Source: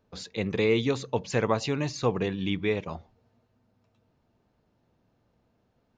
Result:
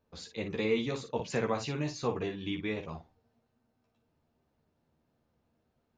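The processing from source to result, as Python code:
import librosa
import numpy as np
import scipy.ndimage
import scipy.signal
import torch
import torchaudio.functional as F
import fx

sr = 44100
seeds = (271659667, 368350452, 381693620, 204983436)

y = fx.room_early_taps(x, sr, ms=(13, 56), db=(-3.5, -8.0))
y = fx.band_squash(y, sr, depth_pct=40, at=(1.19, 1.66))
y = F.gain(torch.from_numpy(y), -7.5).numpy()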